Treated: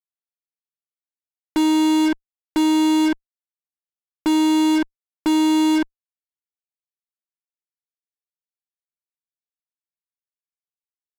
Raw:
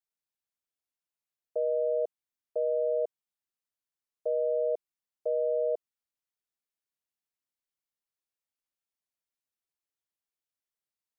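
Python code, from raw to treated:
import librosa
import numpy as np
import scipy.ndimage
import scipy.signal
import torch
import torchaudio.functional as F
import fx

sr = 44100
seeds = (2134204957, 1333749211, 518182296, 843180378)

y = fx.room_early_taps(x, sr, ms=(22, 67), db=(-10.0, -17.0))
y = fx.vocoder(y, sr, bands=4, carrier='square', carrier_hz=312.0)
y = fx.fuzz(y, sr, gain_db=54.0, gate_db=-58.0)
y = y * librosa.db_to_amplitude(-2.0)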